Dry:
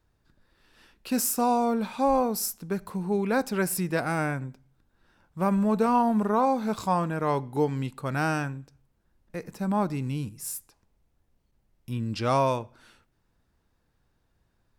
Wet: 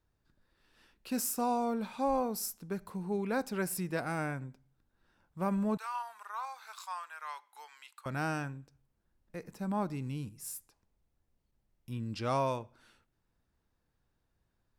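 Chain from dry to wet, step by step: 5.77–8.06 s: high-pass 1.1 kHz 24 dB/octave; trim -7.5 dB

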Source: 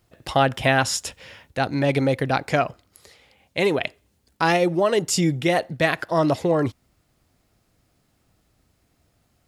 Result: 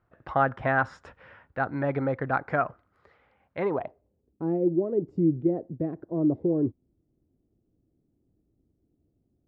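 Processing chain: dynamic bell 2.9 kHz, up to -6 dB, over -41 dBFS, Q 2.5; low-pass sweep 1.4 kHz -> 340 Hz, 3.59–4.37 s; trim -7.5 dB

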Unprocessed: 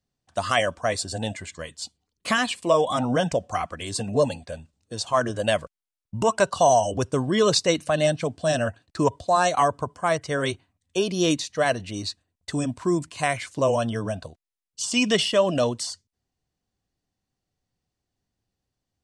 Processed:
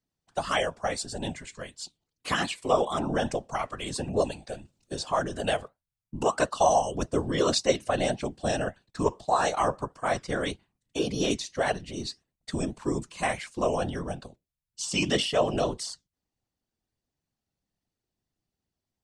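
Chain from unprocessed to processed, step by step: flange 1.7 Hz, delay 3.3 ms, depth 4 ms, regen +82%; whisper effect; 3.59–5.51 s: three bands compressed up and down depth 40%

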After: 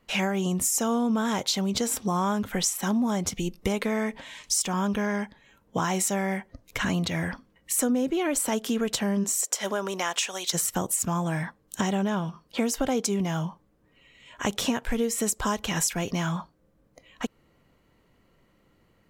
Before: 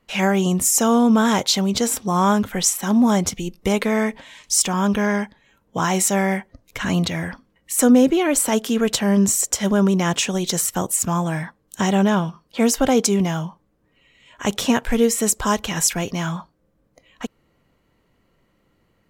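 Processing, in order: 9.23–10.53 s: high-pass 330 Hz -> 950 Hz 12 dB/octave; compression 4:1, threshold -24 dBFS, peak gain reduction 12.5 dB

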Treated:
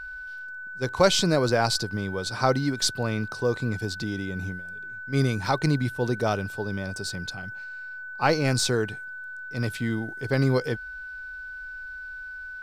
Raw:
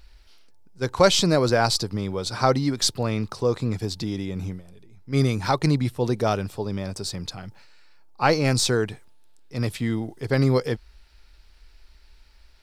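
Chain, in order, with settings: whistle 1.5 kHz -33 dBFS; short-mantissa float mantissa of 6-bit; trim -2.5 dB

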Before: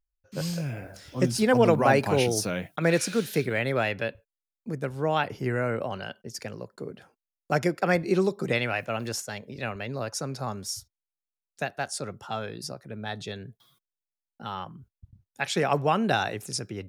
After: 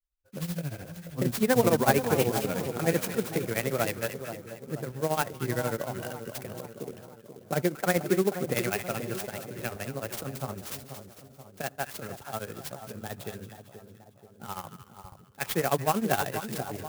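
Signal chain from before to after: granulator, grains 13 per s, spray 14 ms, pitch spread up and down by 0 st; on a send: two-band feedback delay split 1.2 kHz, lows 482 ms, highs 226 ms, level -9.5 dB; on the sum: sampling jitter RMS 0.057 ms

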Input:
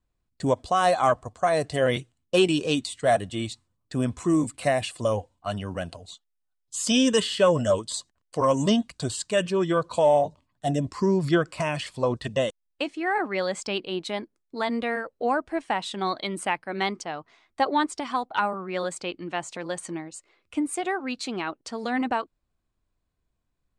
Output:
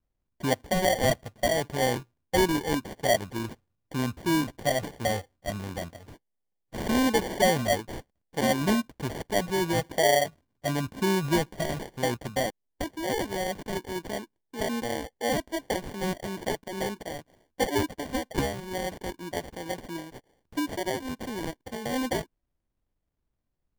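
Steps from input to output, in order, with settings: sample-and-hold 34×; trim -3 dB

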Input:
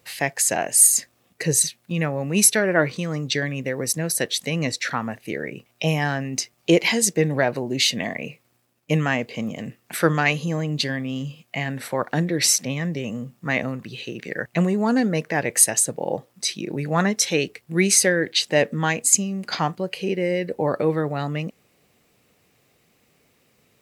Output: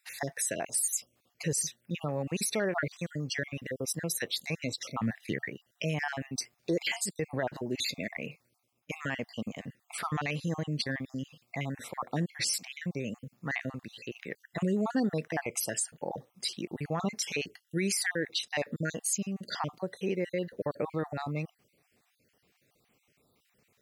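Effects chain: random holes in the spectrogram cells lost 42%; 5.01–5.49 s: graphic EQ 125/250/1000/2000/4000 Hz +11/+4/-12/+8/+5 dB; peak limiter -14 dBFS, peak gain reduction 10 dB; trim -6.5 dB

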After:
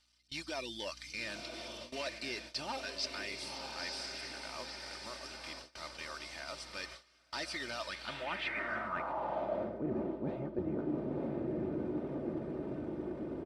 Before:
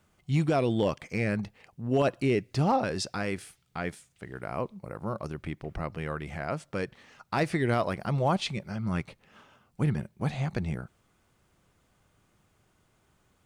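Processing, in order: one-bit delta coder 64 kbps, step -43 dBFS; reverb removal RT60 0.59 s; on a send: echo that smears into a reverb 982 ms, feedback 56%, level -5 dB; on the sum: band-pass sweep 5 kHz -> 380 Hz, 7.81–9.93 s; treble shelf 7.8 kHz -8 dB; band-stop 6.7 kHz, Q 6.2; reverse; compression 12:1, threshold -45 dBFS, peak gain reduction 14.5 dB; reverse; hum 60 Hz, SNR 24 dB; gate with hold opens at -47 dBFS; bass shelf 340 Hz +4.5 dB; comb 3.3 ms, depth 51%; trim +10 dB

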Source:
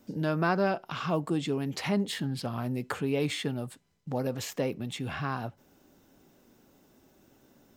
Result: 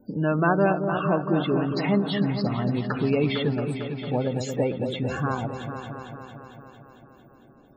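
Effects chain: loudest bins only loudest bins 32; delay with an opening low-pass 226 ms, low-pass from 750 Hz, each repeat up 2 oct, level -6 dB; endings held to a fixed fall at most 140 dB/s; trim +5.5 dB

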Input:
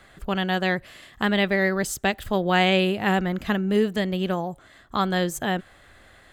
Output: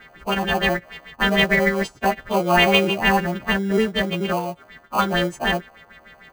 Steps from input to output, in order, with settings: partials quantised in pitch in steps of 2 st; LFO low-pass sine 6.6 Hz 760–3100 Hz; bass shelf 86 Hz -10.5 dB; in parallel at -8.5 dB: sample-rate reducer 1.8 kHz, jitter 0%

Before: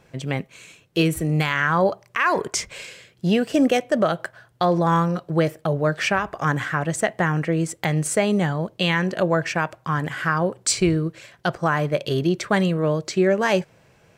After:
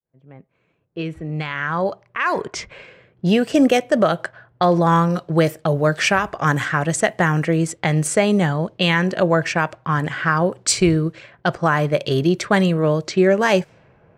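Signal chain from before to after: fade-in on the opening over 3.52 s; level-controlled noise filter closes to 1.1 kHz, open at -18.5 dBFS; 5.10–7.57 s: treble shelf 5.6 kHz +7 dB; trim +3.5 dB

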